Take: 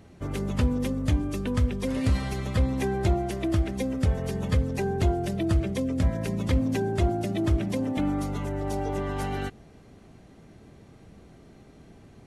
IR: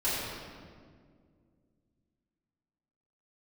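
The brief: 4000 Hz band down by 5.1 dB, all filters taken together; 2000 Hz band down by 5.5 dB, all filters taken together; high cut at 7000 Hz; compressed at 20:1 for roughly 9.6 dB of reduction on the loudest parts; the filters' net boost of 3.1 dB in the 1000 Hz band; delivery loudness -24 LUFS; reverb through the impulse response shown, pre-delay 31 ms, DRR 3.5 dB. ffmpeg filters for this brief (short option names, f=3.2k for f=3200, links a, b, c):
-filter_complex "[0:a]lowpass=7k,equalizer=f=1k:t=o:g=6.5,equalizer=f=2k:t=o:g=-8.5,equalizer=f=4k:t=o:g=-3.5,acompressor=threshold=-27dB:ratio=20,asplit=2[a][b];[1:a]atrim=start_sample=2205,adelay=31[c];[b][c]afir=irnorm=-1:irlink=0,volume=-13.5dB[d];[a][d]amix=inputs=2:normalize=0,volume=6dB"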